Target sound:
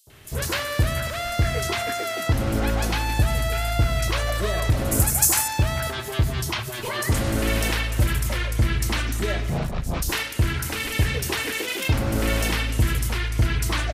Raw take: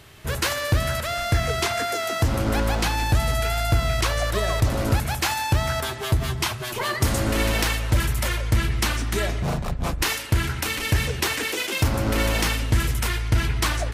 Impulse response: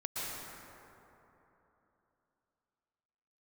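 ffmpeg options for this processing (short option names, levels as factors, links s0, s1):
-filter_complex "[0:a]asettb=1/sr,asplit=3[s0][s1][s2];[s0]atrim=end=4.914[s3];[s1]atrim=start=4.91:end=5.48,asetpts=PTS-STARTPTS,afade=t=in:d=0.004:c=qsin,afade=t=out:st=0.566:d=0.004:c=qsin,highshelf=f=5300:t=q:w=1.5:g=13.5[s4];[s2]atrim=start=5.476[s5];[s3][s4]acrossfade=d=0.004:c1=hsin:c2=qsin[s6];[s6][s5]acrossfade=d=0.004:c1=qsin:c2=hsin,acrossover=split=1000|5200[s7][s8][s9];[s7]adelay=70[s10];[s8]adelay=100[s11];[s10][s11][s9]amix=inputs=3:normalize=0"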